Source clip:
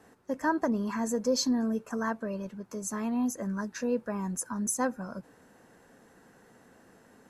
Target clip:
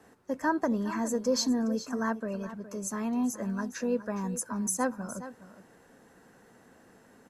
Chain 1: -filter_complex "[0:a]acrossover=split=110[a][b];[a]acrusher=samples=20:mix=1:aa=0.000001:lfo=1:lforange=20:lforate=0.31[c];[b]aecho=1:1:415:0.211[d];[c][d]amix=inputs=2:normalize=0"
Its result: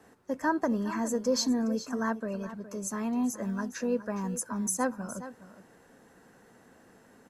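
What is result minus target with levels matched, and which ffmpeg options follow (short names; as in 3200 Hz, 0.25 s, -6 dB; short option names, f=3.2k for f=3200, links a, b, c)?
decimation with a swept rate: distortion +9 dB
-filter_complex "[0:a]acrossover=split=110[a][b];[a]acrusher=samples=8:mix=1:aa=0.000001:lfo=1:lforange=8:lforate=0.31[c];[b]aecho=1:1:415:0.211[d];[c][d]amix=inputs=2:normalize=0"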